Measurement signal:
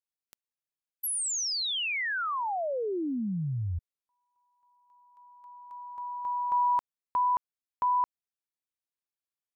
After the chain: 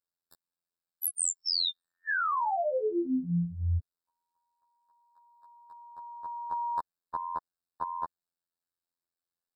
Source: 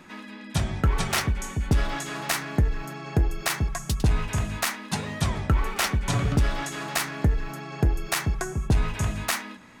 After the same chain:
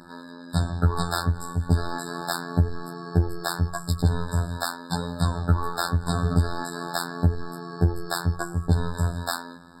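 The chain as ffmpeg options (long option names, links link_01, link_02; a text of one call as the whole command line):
ffmpeg -i in.wav -af "afftfilt=real='hypot(re,im)*cos(PI*b)':imag='0':win_size=2048:overlap=0.75,acontrast=36,afftfilt=real='re*eq(mod(floor(b*sr/1024/1800),2),0)':imag='im*eq(mod(floor(b*sr/1024/1800),2),0)':win_size=1024:overlap=0.75" out.wav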